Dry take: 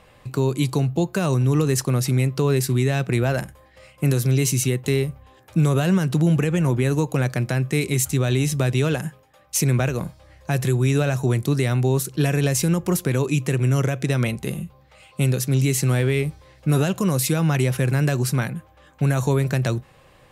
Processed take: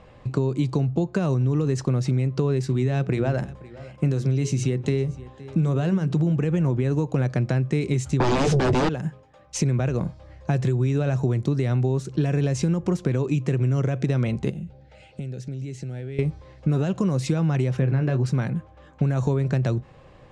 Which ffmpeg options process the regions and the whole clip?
-filter_complex "[0:a]asettb=1/sr,asplit=3[s0][s1][s2];[s0]atrim=end=2.664[s3];[s1]atrim=start=2.66:end=6.33,asetpts=PTS-STARTPTS,afade=t=in:d=0.004:c=qsin,afade=t=out:st=3.666:d=0.004:c=qsin,bandreject=f=60:t=h:w=6,bandreject=f=120:t=h:w=6,bandreject=f=180:t=h:w=6,bandreject=f=240:t=h:w=6,bandreject=f=300:t=h:w=6,bandreject=f=360:t=h:w=6,bandreject=f=420:t=h:w=6,aecho=1:1:517:0.0668,atrim=end_sample=161847[s4];[s2]atrim=start=6.326[s5];[s3][s4]acrossfade=d=0.004:c1=hsin:c2=qsin[s6];[s6][s5]acrossfade=d=0.004:c1=qsin:c2=hsin,asettb=1/sr,asplit=3[s7][s8][s9];[s7]atrim=end=8.204[s10];[s8]atrim=start=8.2:end=8.89,asetpts=PTS-STARTPTS,afade=t=in:d=0.004:c=qsin,afade=t=out:st=0.686:d=0.004:c=qsin,lowshelf=f=76:g=11,aeval=exprs='0.398*sin(PI/2*5.62*val(0)/0.398)':c=same,asplit=2[s11][s12];[s12]adelay=16,volume=0.211[s13];[s11][s13]amix=inputs=2:normalize=0,atrim=end_sample=30429[s14];[s9]atrim=start=8.886[s15];[s10][s14]acrossfade=d=0.004:c1=hsin:c2=qsin[s16];[s16][s15]acrossfade=d=0.004:c1=qsin:c2=hsin,asettb=1/sr,asplit=3[s17][s18][s19];[s17]atrim=end=14.504[s20];[s18]atrim=start=14.5:end=16.19,asetpts=PTS-STARTPTS,afade=t=in:d=0.004:c=qsin,afade=t=out:st=1.686:d=0.004:c=qsin,acompressor=threshold=0.0224:ratio=12:attack=3.2:release=140:knee=1:detection=peak,asuperstop=centerf=1100:order=4:qfactor=2.5[s21];[s19]atrim=start=16.186[s22];[s20][s21]acrossfade=d=0.004:c1=hsin:c2=qsin[s23];[s23][s22]acrossfade=d=0.004:c1=qsin:c2=hsin,asettb=1/sr,asplit=3[s24][s25][s26];[s24]atrim=end=17.794[s27];[s25]atrim=start=17.79:end=18.26,asetpts=PTS-STARTPTS,afade=t=in:d=0.004:c=qsin,afade=t=out:st=0.466:d=0.004:c=qsin,lowpass=3600,asplit=2[s28][s29];[s29]adelay=23,volume=0.355[s30];[s28][s30]amix=inputs=2:normalize=0,atrim=end_sample=20727[s31];[s26]atrim=start=18.256[s32];[s27][s31]acrossfade=d=0.004:c1=hsin:c2=qsin[s33];[s33][s32]acrossfade=d=0.004:c1=qsin:c2=hsin,lowpass=f=7200:w=0.5412,lowpass=f=7200:w=1.3066,tiltshelf=f=1100:g=5,acompressor=threshold=0.112:ratio=6"

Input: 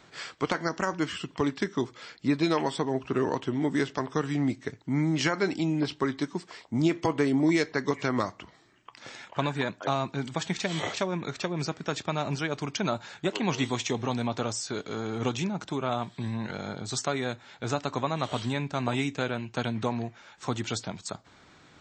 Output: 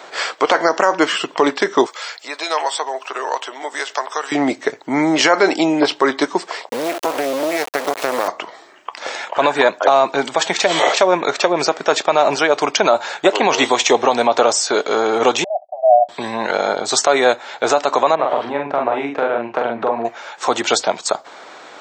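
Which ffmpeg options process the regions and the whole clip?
-filter_complex "[0:a]asettb=1/sr,asplit=3[s0][s1][s2];[s0]atrim=end=1.864[s3];[s1]atrim=start=1.86:end=4.32,asetpts=PTS-STARTPTS,afade=t=in:d=0.004:c=qsin,afade=t=out:st=2.456:d=0.004:c=qsin,highshelf=f=6000:g=11,acompressor=threshold=0.00562:ratio=1.5:attack=3.2:release=140:knee=1:detection=peak,highpass=730[s4];[s2]atrim=start=4.316[s5];[s3][s4]acrossfade=d=0.004:c1=hsin:c2=qsin[s6];[s6][s5]acrossfade=d=0.004:c1=qsin:c2=hsin,asettb=1/sr,asplit=3[s7][s8][s9];[s7]atrim=end=6.694[s10];[s8]atrim=start=6.69:end=8.28,asetpts=PTS-STARTPTS,afade=t=in:d=0.004:c=qsin,afade=t=out:st=1.586:d=0.004:c=qsin,equalizer=f=270:t=o:w=0.4:g=4.5,acompressor=threshold=0.0398:ratio=12:attack=3.2:release=140:knee=1:detection=peak,acrusher=bits=4:dc=4:mix=0:aa=0.000001[s11];[s9]atrim=start=8.276[s12];[s10][s11]acrossfade=d=0.004:c1=hsin:c2=qsin[s13];[s13][s12]acrossfade=d=0.004:c1=qsin:c2=hsin,asettb=1/sr,asplit=3[s14][s15][s16];[s14]atrim=end=15.444[s17];[s15]atrim=start=15.44:end=16.09,asetpts=PTS-STARTPTS,afade=t=in:d=0.004:c=qsin,afade=t=out:st=0.646:d=0.004:c=qsin,agate=range=0.0224:threshold=0.02:ratio=3:release=100:detection=peak,asuperpass=centerf=670:order=8:qfactor=3.8[s18];[s16]atrim=start=16.086[s19];[s17][s18]acrossfade=d=0.004:c1=hsin:c2=qsin[s20];[s20][s19]acrossfade=d=0.004:c1=qsin:c2=hsin,asettb=1/sr,asplit=3[s21][s22][s23];[s21]atrim=end=18.154[s24];[s22]atrim=start=18.15:end=20.05,asetpts=PTS-STARTPTS,afade=t=in:d=0.004:c=qsin,afade=t=out:st=1.896:d=0.004:c=qsin,lowpass=1700,acompressor=threshold=0.02:ratio=3:attack=3.2:release=140:knee=1:detection=peak,asplit=2[s25][s26];[s26]adelay=43,volume=0.708[s27];[s25][s27]amix=inputs=2:normalize=0,atrim=end_sample=83790[s28];[s23]atrim=start=20.046[s29];[s24][s28]acrossfade=d=0.004:c1=hsin:c2=qsin[s30];[s30][s29]acrossfade=d=0.004:c1=qsin:c2=hsin,highpass=480,equalizer=f=610:t=o:w=1.8:g=9,alimiter=level_in=6.68:limit=0.891:release=50:level=0:latency=1,volume=0.891"

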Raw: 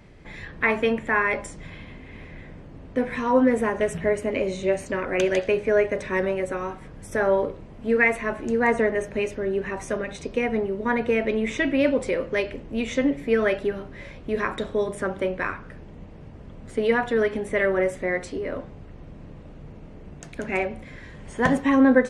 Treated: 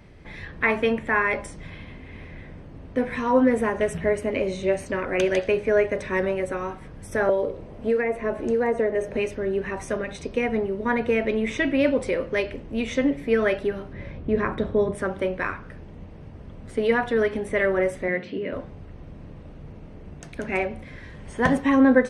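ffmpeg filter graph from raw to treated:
-filter_complex "[0:a]asettb=1/sr,asplit=3[s0][s1][s2];[s0]atrim=end=7.294[s3];[s1]atrim=start=7.29:end=9.17,asetpts=PTS-STARTPTS,afade=t=in:d=0.004:c=qsin,afade=t=out:st=1.876:d=0.004:c=qsin,equalizer=f=520:t=o:w=1.2:g=7.5,acrossover=split=660|2400[s4][s5][s6];[s4]acompressor=threshold=0.0794:ratio=4[s7];[s5]acompressor=threshold=0.0224:ratio=4[s8];[s6]acompressor=threshold=0.00631:ratio=4[s9];[s7][s8][s9]amix=inputs=3:normalize=0[s10];[s2]atrim=start=9.166[s11];[s3][s10]acrossfade=d=0.004:c1=hsin:c2=qsin[s12];[s12][s11]acrossfade=d=0.004:c1=qsin:c2=hsin,asettb=1/sr,asplit=3[s13][s14][s15];[s13]atrim=end=13.934[s16];[s14]atrim=start=13.93:end=14.95,asetpts=PTS-STARTPTS,afade=t=in:d=0.004:c=qsin,afade=t=out:st=1.016:d=0.004:c=qsin,highpass=f=190:p=1,aemphasis=mode=reproduction:type=riaa[s17];[s15]atrim=start=14.946[s18];[s16][s17]acrossfade=d=0.004:c1=hsin:c2=qsin[s19];[s19][s18]acrossfade=d=0.004:c1=qsin:c2=hsin,asettb=1/sr,asplit=3[s20][s21][s22];[s20]atrim=end=18.084[s23];[s21]atrim=start=18.08:end=18.53,asetpts=PTS-STARTPTS,afade=t=in:d=0.004:c=qsin,afade=t=out:st=0.446:d=0.004:c=qsin,acrusher=bits=8:mix=0:aa=0.5,highpass=f=120:w=0.5412,highpass=f=120:w=1.3066,equalizer=f=200:t=q:w=4:g=7,equalizer=f=800:t=q:w=4:g=-9,equalizer=f=1200:t=q:w=4:g=-7,equalizer=f=2800:t=q:w=4:g=7,lowpass=f=3800:w=0.5412,lowpass=f=3800:w=1.3066[s24];[s22]atrim=start=18.526[s25];[s23][s24]acrossfade=d=0.004:c1=hsin:c2=qsin[s26];[s26][s25]acrossfade=d=0.004:c1=qsin:c2=hsin,equalizer=f=77:t=o:w=0.77:g=3.5,bandreject=f=7100:w=7.7"

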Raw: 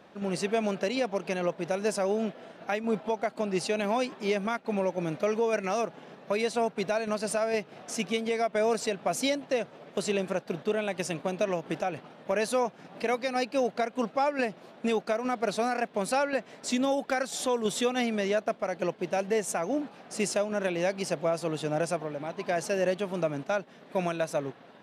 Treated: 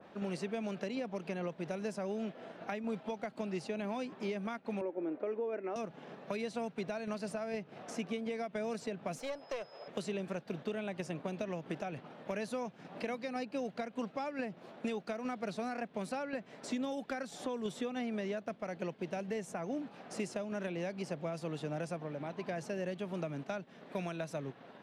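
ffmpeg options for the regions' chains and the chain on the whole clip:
-filter_complex "[0:a]asettb=1/sr,asplit=3[s0][s1][s2];[s0]atrim=end=4.814[s3];[s1]atrim=start=4.81:end=5.76,asetpts=PTS-STARTPTS,afade=t=in:d=0.004:c=qsin,afade=t=out:st=0.946:d=0.004:c=qsin,lowpass=1300,lowshelf=f=230:t=q:w=3:g=-12.5[s4];[s2]atrim=start=5.756[s5];[s3][s4]acrossfade=d=0.004:c1=hsin:c2=qsin[s6];[s6][s5]acrossfade=d=0.004:c1=qsin:c2=hsin,asettb=1/sr,asplit=3[s7][s8][s9];[s7]atrim=end=9.184[s10];[s8]atrim=start=9.18:end=9.88,asetpts=PTS-STARTPTS,afade=t=in:d=0.004:c=qsin,afade=t=out:st=0.696:d=0.004:c=qsin,aeval=exprs='clip(val(0),-1,0.0224)':c=same,aeval=exprs='val(0)+0.00251*sin(2*PI*5100*n/s)':c=same,lowshelf=f=360:t=q:w=1.5:g=-12[s11];[s9]atrim=start=9.876[s12];[s10][s11]acrossfade=d=0.004:c1=hsin:c2=qsin[s13];[s13][s12]acrossfade=d=0.004:c1=qsin:c2=hsin,highshelf=f=5400:g=-8,acrossover=split=240|2100[s14][s15][s16];[s14]acompressor=threshold=0.01:ratio=4[s17];[s15]acompressor=threshold=0.0112:ratio=4[s18];[s16]acompressor=threshold=0.00447:ratio=4[s19];[s17][s18][s19]amix=inputs=3:normalize=0,adynamicequalizer=threshold=0.00224:dfrequency=2300:dqfactor=0.7:tfrequency=2300:tqfactor=0.7:attack=5:release=100:ratio=0.375:range=2:mode=cutabove:tftype=highshelf,volume=0.891"

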